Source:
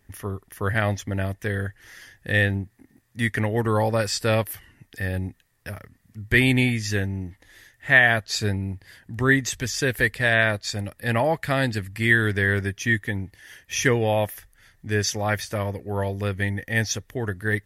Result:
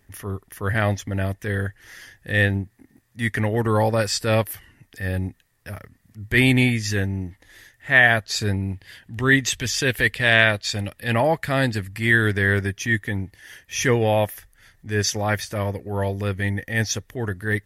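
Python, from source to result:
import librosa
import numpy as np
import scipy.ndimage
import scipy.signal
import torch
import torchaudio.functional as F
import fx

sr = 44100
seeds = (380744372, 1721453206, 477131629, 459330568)

y = fx.peak_eq(x, sr, hz=3000.0, db=7.5, octaves=0.82, at=(8.7, 11.14))
y = fx.transient(y, sr, attack_db=-6, sustain_db=-2)
y = y * 10.0 ** (3.0 / 20.0)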